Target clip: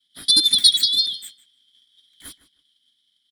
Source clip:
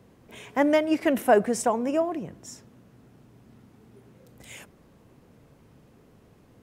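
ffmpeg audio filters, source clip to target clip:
-filter_complex "[0:a]afftfilt=real='real(if(lt(b,272),68*(eq(floor(b/68),0)*2+eq(floor(b/68),1)*0+eq(floor(b/68),2)*3+eq(floor(b/68),3)*1)+mod(b,68),b),0)':imag='imag(if(lt(b,272),68*(eq(floor(b/68),0)*2+eq(floor(b/68),1)*0+eq(floor(b/68),2)*3+eq(floor(b/68),3)*1)+mod(b,68),b),0)':win_size=2048:overlap=0.75,agate=range=-33dB:threshold=-43dB:ratio=3:detection=peak,equalizer=f=125:t=o:w=1:g=9,equalizer=f=250:t=o:w=1:g=-8,equalizer=f=500:t=o:w=1:g=-7,equalizer=f=1k:t=o:w=1:g=11,equalizer=f=2k:t=o:w=1:g=-5,equalizer=f=4k:t=o:w=1:g=6,equalizer=f=8k:t=o:w=1:g=-10,asplit=2[a][b];[b]adelay=311,lowpass=f=2.6k:p=1,volume=-16dB,asplit=2[c][d];[d]adelay=311,lowpass=f=2.6k:p=1,volume=0.17[e];[a][c][e]amix=inputs=3:normalize=0,asetrate=88200,aresample=44100,volume=7.5dB"

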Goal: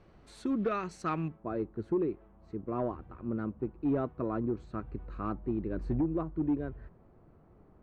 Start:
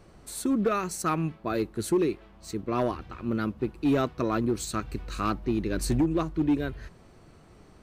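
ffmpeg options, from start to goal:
-af "asetnsamples=n=441:p=0,asendcmd='1.28 lowpass f 1100',lowpass=3.6k,volume=-5.5dB"

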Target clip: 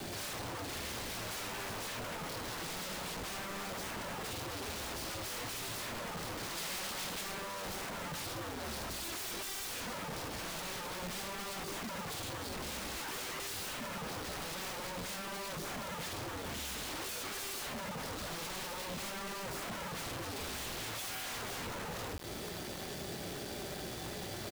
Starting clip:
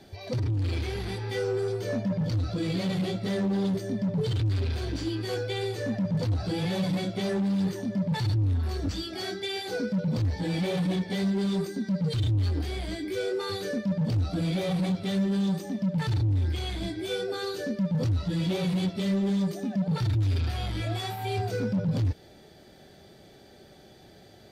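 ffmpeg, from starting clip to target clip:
-filter_complex "[0:a]acrossover=split=200[a][b];[a]asoftclip=type=hard:threshold=-30.5dB[c];[c][b]amix=inputs=2:normalize=0,acontrast=32,asplit=2[d][e];[e]alimiter=limit=-20.5dB:level=0:latency=1,volume=-2dB[f];[d][f]amix=inputs=2:normalize=0,asettb=1/sr,asplit=3[g][h][i];[g]atrim=end=16.574[j];[h]atrim=start=16.57:end=17.27,asetpts=PTS-STARTPTS,afade=t=in:d=0.004:c=qsin,afade=t=out:st=0.696:d=0.004:c=qsin,highpass=f=65:p=1[k];[i]atrim=start=17.266[l];[j][k]acrossfade=d=0.004:c1=hsin:c2=qsin[m];[m][l]acrossfade=d=0.004:c1=qsin:c2=hsin,aecho=1:1:17|29|50:0.335|0.2|0.376,acompressor=threshold=-29dB:ratio=16,acrusher=bits=6:mix=0:aa=0.000001,aeval=exprs='(mod(50.1*val(0)+1,2)-1)/50.1':c=same,asettb=1/sr,asplit=3[n][o][p];[n]atrim=end=6.574[q];[o]atrim=start=6.57:end=7.21,asetpts=PTS-STARTPTS,afade=t=in:d=0.004:c=qsin,afade=t=out:st=0.636:d=0.004:c=qsin,tiltshelf=f=970:g=-3[r];[p]atrim=start=7.206[s];[q][r]acrossfade=d=0.004:c1=hsin:c2=qsin[t];[t][s]acrossfade=d=0.004:c1=qsin:c2=hsin,volume=-2dB"

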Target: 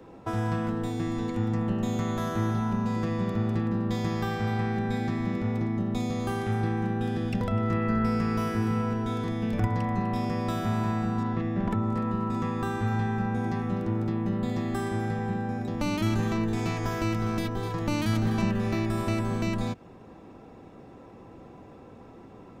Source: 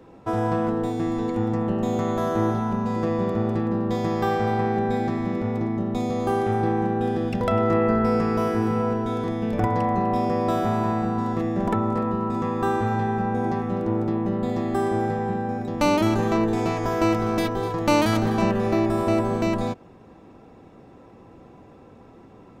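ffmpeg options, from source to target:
-filter_complex "[0:a]asettb=1/sr,asplit=3[a][b][c];[a]atrim=end=11.234[d];[b]atrim=start=11.23:end=11.71,asetpts=PTS-STARTPTS,afade=t=in:d=0.004:c=qsin,afade=t=out:st=0.476:d=0.004:c=qsin,lowpass=3.4k[e];[c]atrim=start=11.706[f];[d][e]acrossfade=d=0.004:c1=hsin:c2=qsin[g];[g][f]acrossfade=d=0.004:c1=qsin:c2=hsin,acrossover=split=240|1300[h][i][j];[i]acompressor=threshold=-35dB:ratio=10[k];[j]alimiter=level_in=4dB:limit=-24dB:level=0:latency=1:release=412,volume=-4dB[l];[h][k][l]amix=inputs=3:normalize=0"

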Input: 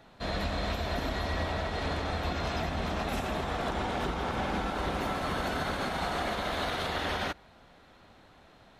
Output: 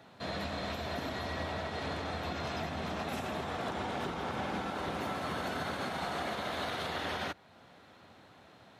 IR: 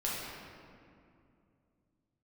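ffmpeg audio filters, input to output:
-filter_complex "[0:a]highpass=f=84:w=0.5412,highpass=f=84:w=1.3066,asplit=2[a][b];[b]acompressor=threshold=-47dB:ratio=6,volume=-2dB[c];[a][c]amix=inputs=2:normalize=0,volume=-5dB"

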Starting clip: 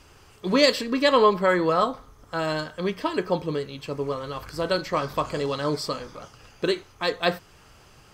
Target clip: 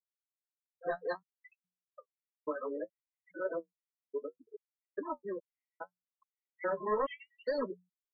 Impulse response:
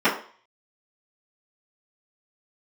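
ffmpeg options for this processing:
-filter_complex "[0:a]areverse,acrossover=split=280 3300:gain=0.178 1 0.178[a][b][c];[a][b][c]amix=inputs=3:normalize=0,asoftclip=type=tanh:threshold=-20.5dB,afftfilt=real='re*gte(hypot(re,im),0.0708)':imag='im*gte(hypot(re,im),0.0708)':win_size=1024:overlap=0.75,agate=range=-33dB:threshold=-52dB:ratio=3:detection=peak,bandreject=f=60:t=h:w=6,bandreject=f=120:t=h:w=6,bandreject=f=180:t=h:w=6,flanger=delay=6.7:depth=8.3:regen=40:speed=0.64:shape=triangular,afftfilt=real='re*gt(sin(2*PI*1.2*pts/sr)*(1-2*mod(floor(b*sr/1024/1900),2)),0)':imag='im*gt(sin(2*PI*1.2*pts/sr)*(1-2*mod(floor(b*sr/1024/1900),2)),0)':win_size=1024:overlap=0.75,volume=-3dB"

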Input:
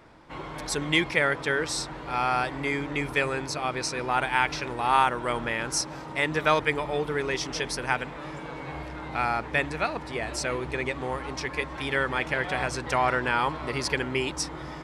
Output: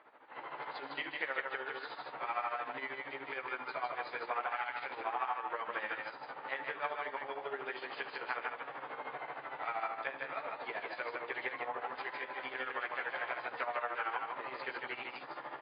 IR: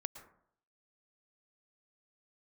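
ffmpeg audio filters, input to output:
-filter_complex "[0:a]asetrate=41895,aresample=44100,asplit=2[a][b];[b]adelay=15,volume=-3dB[c];[a][c]amix=inputs=2:normalize=0,acompressor=threshold=-27dB:ratio=10,aemphasis=mode=reproduction:type=cd,asplit=2[d][e];[1:a]atrim=start_sample=2205,lowpass=8.7k[f];[e][f]afir=irnorm=-1:irlink=0,volume=-4dB[g];[d][g]amix=inputs=2:normalize=0,tremolo=f=13:d=0.73,highpass=650,aecho=1:1:74|155:0.158|0.668,asplit=3[h][i][j];[i]asetrate=66075,aresample=44100,atempo=0.66742,volume=-14dB[k];[j]asetrate=88200,aresample=44100,atempo=0.5,volume=-17dB[l];[h][k][l]amix=inputs=3:normalize=0,lowpass=2.5k,volume=-5dB" -ar 11025 -c:a libmp3lame -b:a 24k

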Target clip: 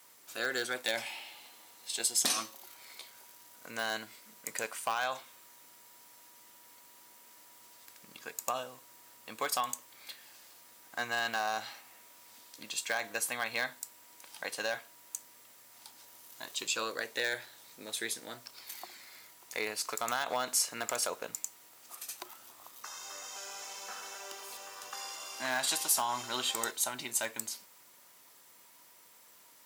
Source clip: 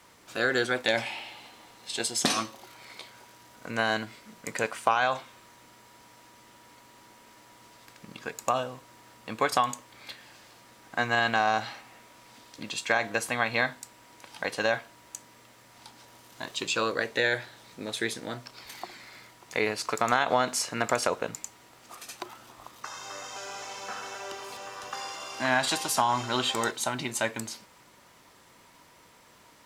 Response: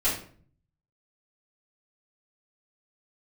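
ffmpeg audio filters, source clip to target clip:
-af "volume=15dB,asoftclip=hard,volume=-15dB,aemphasis=mode=production:type=bsi,volume=-8dB"

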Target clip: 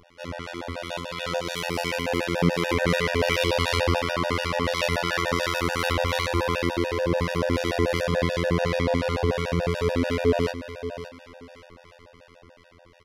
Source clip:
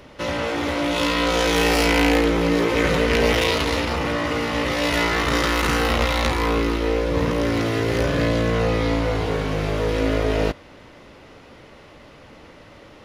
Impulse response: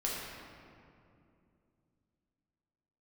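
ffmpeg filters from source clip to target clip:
-filter_complex "[0:a]asettb=1/sr,asplit=3[a][b][c];[a]atrim=end=2.394[d];[b]atrim=start=2.39:end=3.99,asetpts=PTS-STARTPTS,afade=t=in:d=0.004:c=qsin,afade=t=out:st=1.596:d=0.004:c=qsin,acontrast=44[e];[c]atrim=start=3.986[f];[d][e]acrossfade=d=0.004:c1=hsin:c2=qsin[g];[g][f]acrossfade=d=0.004:c1=qsin:c2=hsin,alimiter=limit=-12dB:level=0:latency=1:release=128,dynaudnorm=f=250:g=13:m=9dB,afftfilt=real='hypot(re,im)*cos(PI*b)':imag='0':win_size=2048:overlap=0.75,acrossover=split=1200[h][i];[h]aeval=exprs='val(0)*(1-0.5/2+0.5/2*cos(2*PI*2.8*n/s))':c=same[j];[i]aeval=exprs='val(0)*(1-0.5/2-0.5/2*cos(2*PI*2.8*n/s))':c=same[k];[j][k]amix=inputs=2:normalize=0,aecho=1:1:567|1134:0.266|0.0479,afftfilt=real='re*gt(sin(2*PI*6.9*pts/sr)*(1-2*mod(floor(b*sr/1024/480),2)),0)':imag='im*gt(sin(2*PI*6.9*pts/sr)*(1-2*mod(floor(b*sr/1024/480),2)),0)':win_size=1024:overlap=0.75,volume=-1dB"

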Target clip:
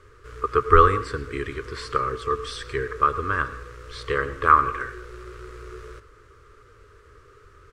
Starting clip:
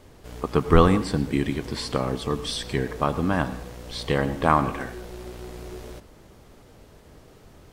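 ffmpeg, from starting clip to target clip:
-af "firequalizer=gain_entry='entry(110,0);entry(170,-20);entry(290,-11);entry(420,5);entry(740,-23);entry(1200,12);entry(1900,2);entry(3300,-5);entry(7900,-5);entry(14000,-17)':delay=0.05:min_phase=1,volume=-1dB"

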